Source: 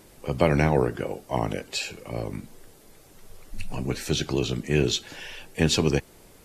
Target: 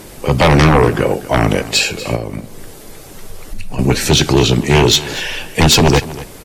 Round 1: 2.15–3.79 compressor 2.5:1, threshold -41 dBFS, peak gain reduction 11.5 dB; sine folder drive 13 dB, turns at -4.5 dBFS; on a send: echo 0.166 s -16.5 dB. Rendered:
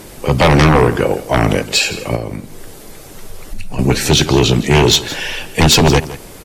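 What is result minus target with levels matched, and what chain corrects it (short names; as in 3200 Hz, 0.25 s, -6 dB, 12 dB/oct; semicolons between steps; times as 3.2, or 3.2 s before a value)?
echo 75 ms early
2.15–3.79 compressor 2.5:1, threshold -41 dBFS, peak gain reduction 11.5 dB; sine folder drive 13 dB, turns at -4.5 dBFS; on a send: echo 0.241 s -16.5 dB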